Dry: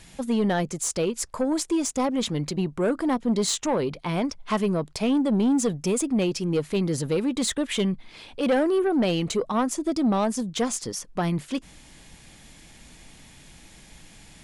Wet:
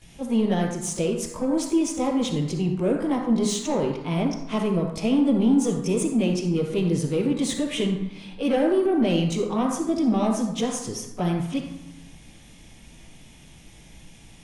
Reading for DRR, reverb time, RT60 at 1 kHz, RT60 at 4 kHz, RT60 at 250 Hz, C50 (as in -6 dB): -9.5 dB, 0.90 s, 0.95 s, 0.60 s, 1.4 s, 3.5 dB